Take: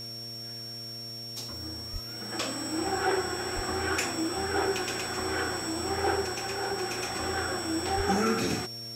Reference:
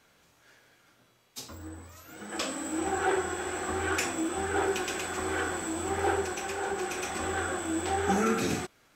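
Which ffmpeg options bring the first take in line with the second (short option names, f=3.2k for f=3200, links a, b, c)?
-filter_complex "[0:a]bandreject=f=116:t=h:w=4,bandreject=f=232:t=h:w=4,bandreject=f=348:t=h:w=4,bandreject=f=464:t=h:w=4,bandreject=f=580:t=h:w=4,bandreject=f=696:t=h:w=4,bandreject=f=5.5k:w=30,asplit=3[a][b][c];[a]afade=t=out:st=1.92:d=0.02[d];[b]highpass=f=140:w=0.5412,highpass=f=140:w=1.3066,afade=t=in:st=1.92:d=0.02,afade=t=out:st=2.04:d=0.02[e];[c]afade=t=in:st=2.04:d=0.02[f];[d][e][f]amix=inputs=3:normalize=0,asplit=3[g][h][i];[g]afade=t=out:st=3.55:d=0.02[j];[h]highpass=f=140:w=0.5412,highpass=f=140:w=1.3066,afade=t=in:st=3.55:d=0.02,afade=t=out:st=3.67:d=0.02[k];[i]afade=t=in:st=3.67:d=0.02[l];[j][k][l]amix=inputs=3:normalize=0,asplit=3[m][n][o];[m]afade=t=out:st=7.96:d=0.02[p];[n]highpass=f=140:w=0.5412,highpass=f=140:w=1.3066,afade=t=in:st=7.96:d=0.02,afade=t=out:st=8.08:d=0.02[q];[o]afade=t=in:st=8.08:d=0.02[r];[p][q][r]amix=inputs=3:normalize=0,afwtdn=0.0025"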